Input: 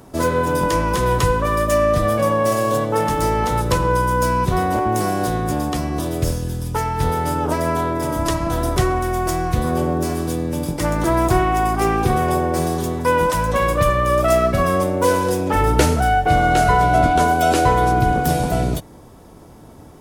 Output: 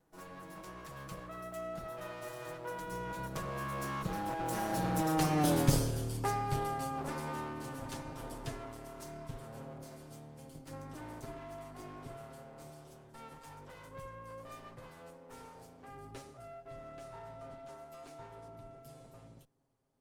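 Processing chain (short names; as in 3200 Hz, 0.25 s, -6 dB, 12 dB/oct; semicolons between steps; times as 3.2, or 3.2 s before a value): minimum comb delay 6.8 ms; Doppler pass-by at 5.5, 33 m/s, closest 11 m; gain -3 dB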